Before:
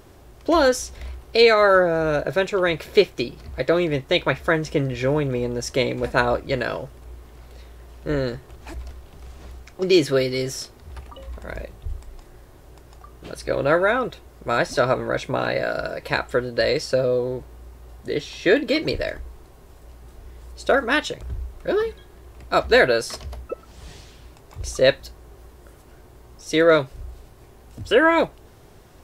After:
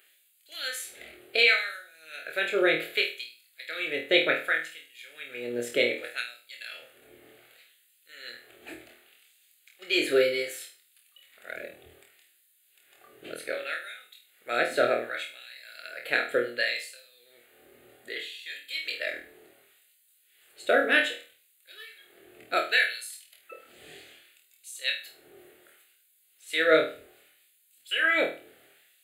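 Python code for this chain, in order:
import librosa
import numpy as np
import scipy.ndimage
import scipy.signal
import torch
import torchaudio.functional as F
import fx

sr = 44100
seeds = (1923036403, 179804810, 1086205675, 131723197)

y = fx.fixed_phaser(x, sr, hz=2400.0, stages=4)
y = fx.filter_lfo_highpass(y, sr, shape='sine', hz=0.66, low_hz=380.0, high_hz=5600.0, q=0.71)
y = fx.room_flutter(y, sr, wall_m=4.3, rt60_s=0.37)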